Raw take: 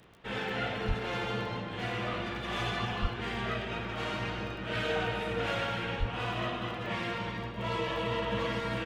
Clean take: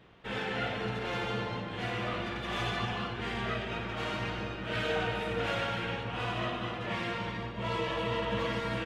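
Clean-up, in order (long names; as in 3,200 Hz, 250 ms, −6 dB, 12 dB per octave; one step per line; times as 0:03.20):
click removal
0:00.87–0:00.99: high-pass filter 140 Hz 24 dB per octave
0:03.01–0:03.13: high-pass filter 140 Hz 24 dB per octave
0:05.99–0:06.11: high-pass filter 140 Hz 24 dB per octave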